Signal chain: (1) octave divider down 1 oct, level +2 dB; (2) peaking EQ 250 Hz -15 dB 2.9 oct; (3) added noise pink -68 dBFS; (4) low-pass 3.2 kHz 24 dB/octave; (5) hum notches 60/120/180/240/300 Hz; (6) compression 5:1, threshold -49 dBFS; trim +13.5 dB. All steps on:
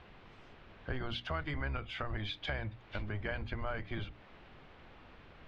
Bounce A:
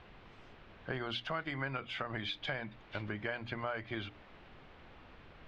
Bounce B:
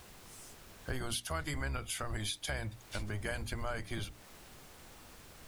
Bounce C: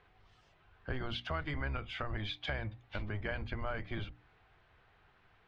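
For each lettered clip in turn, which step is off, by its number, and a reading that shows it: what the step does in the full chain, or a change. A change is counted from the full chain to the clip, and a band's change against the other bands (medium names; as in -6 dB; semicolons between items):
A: 1, 125 Hz band -5.5 dB; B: 4, 4 kHz band +2.5 dB; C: 3, momentary loudness spread change -14 LU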